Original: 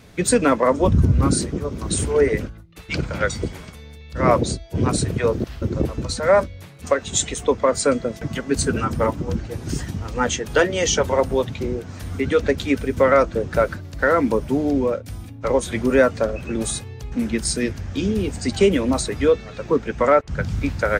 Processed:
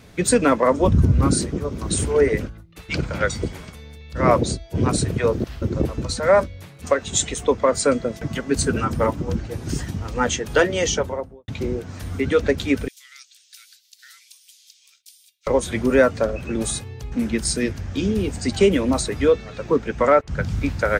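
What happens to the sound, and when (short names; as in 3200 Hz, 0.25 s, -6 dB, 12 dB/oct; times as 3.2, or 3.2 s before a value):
10.75–11.48 studio fade out
12.88–15.47 inverse Chebyshev high-pass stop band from 780 Hz, stop band 70 dB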